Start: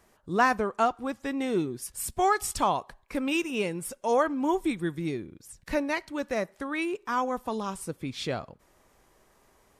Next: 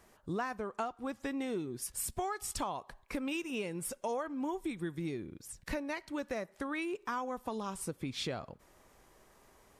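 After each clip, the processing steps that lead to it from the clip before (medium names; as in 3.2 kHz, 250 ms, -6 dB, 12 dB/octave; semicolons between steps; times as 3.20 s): compression 6:1, threshold -34 dBFS, peak gain reduction 16 dB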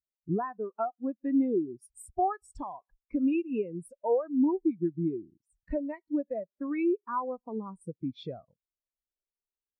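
spectral contrast expander 2.5:1; trim +6 dB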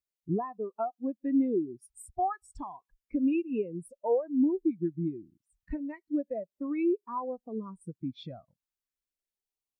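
LFO notch sine 0.33 Hz 430–1700 Hz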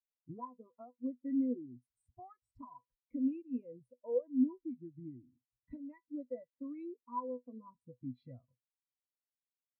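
pitch-class resonator B, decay 0.1 s; trim -1 dB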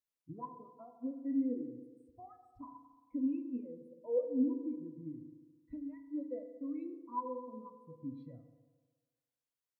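FDN reverb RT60 1.5 s, low-frequency decay 0.8×, high-frequency decay 0.3×, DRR 6 dB; trim -1 dB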